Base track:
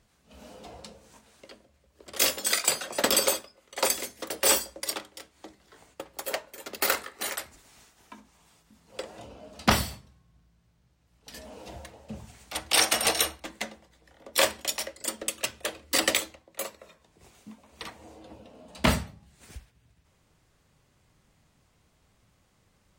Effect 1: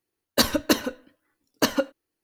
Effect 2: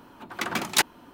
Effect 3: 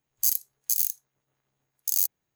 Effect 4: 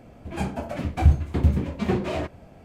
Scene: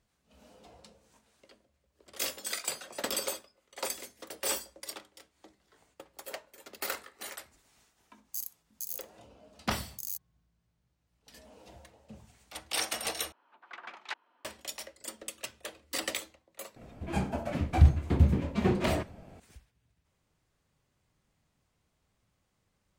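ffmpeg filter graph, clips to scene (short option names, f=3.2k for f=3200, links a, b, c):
-filter_complex "[0:a]volume=-10dB[a];[2:a]highpass=710,lowpass=2.8k[b];[a]asplit=2[c][d];[c]atrim=end=13.324[e];[b]atrim=end=1.13,asetpts=PTS-STARTPTS,volume=-14dB[f];[d]atrim=start=14.446[g];[3:a]atrim=end=2.35,asetpts=PTS-STARTPTS,volume=-14dB,afade=t=in:d=0.004:c=hsin,afade=t=out:st=2.346:d=0.004:c=hsin,adelay=8110[h];[4:a]atrim=end=2.64,asetpts=PTS-STARTPTS,volume=-3dB,afade=t=in:d=0.004:c=hsin,afade=t=out:st=2.636:d=0.004:c=hsin,adelay=16760[i];[e][f]acrossfade=d=0.004:c1=hsin:c2=hsin[j];[j][g]acrossfade=d=0.004:c1=hsin:c2=hsin[k];[k][h][i]amix=inputs=3:normalize=0"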